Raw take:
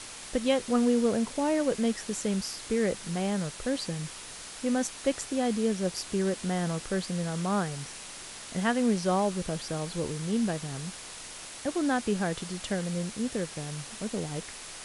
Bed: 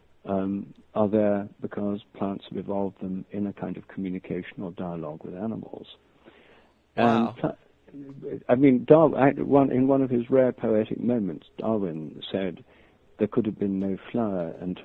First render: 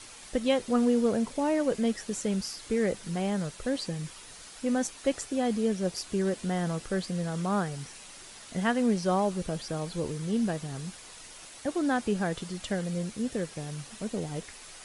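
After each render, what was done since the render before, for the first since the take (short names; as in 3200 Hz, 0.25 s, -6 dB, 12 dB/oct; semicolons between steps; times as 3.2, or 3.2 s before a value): denoiser 7 dB, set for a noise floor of -44 dBFS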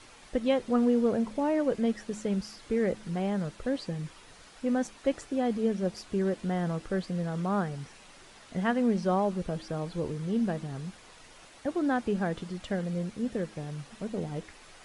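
LPF 2200 Hz 6 dB/oct; de-hum 106.6 Hz, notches 3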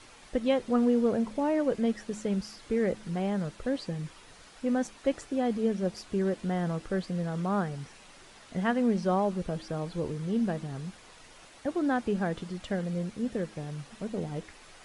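nothing audible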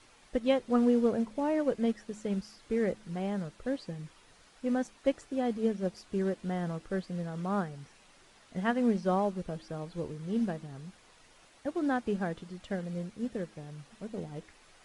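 upward expander 1.5:1, over -36 dBFS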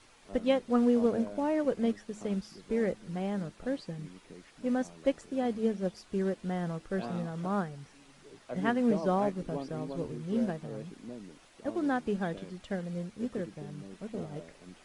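add bed -19.5 dB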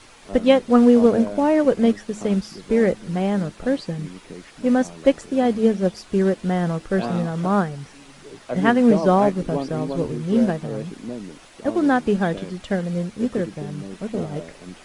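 gain +12 dB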